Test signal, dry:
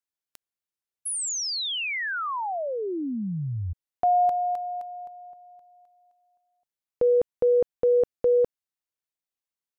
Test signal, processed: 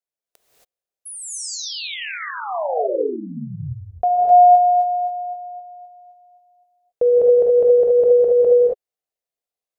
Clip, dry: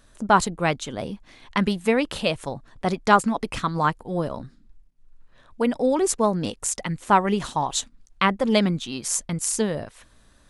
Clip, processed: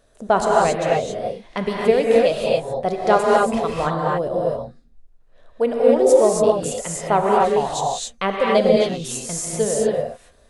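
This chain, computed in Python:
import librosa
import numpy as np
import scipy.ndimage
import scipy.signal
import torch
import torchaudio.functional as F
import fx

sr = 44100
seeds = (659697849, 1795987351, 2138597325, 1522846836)

y = fx.band_shelf(x, sr, hz=550.0, db=10.0, octaves=1.1)
y = fx.rev_gated(y, sr, seeds[0], gate_ms=300, shape='rising', drr_db=-3.0)
y = y * librosa.db_to_amplitude(-5.0)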